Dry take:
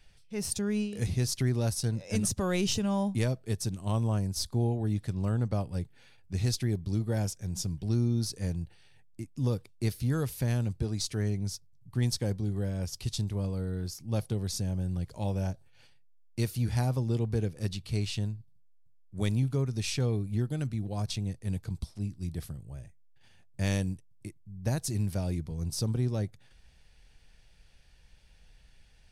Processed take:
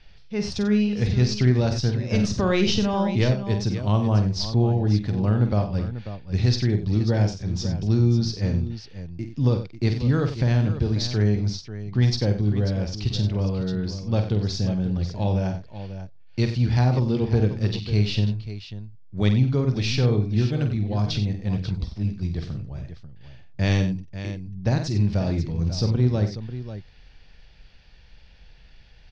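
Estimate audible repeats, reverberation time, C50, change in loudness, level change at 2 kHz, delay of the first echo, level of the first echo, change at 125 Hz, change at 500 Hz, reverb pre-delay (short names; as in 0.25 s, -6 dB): 3, none, none, +8.0 dB, +8.5 dB, 48 ms, -8.0 dB, +8.5 dB, +8.5 dB, none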